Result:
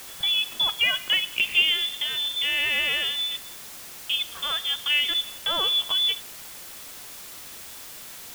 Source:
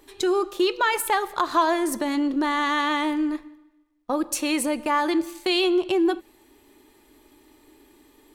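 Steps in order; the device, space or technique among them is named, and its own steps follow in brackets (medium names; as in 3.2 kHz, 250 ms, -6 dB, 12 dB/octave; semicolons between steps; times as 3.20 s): scrambled radio voice (band-pass 350–2700 Hz; frequency inversion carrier 3.8 kHz; white noise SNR 14 dB)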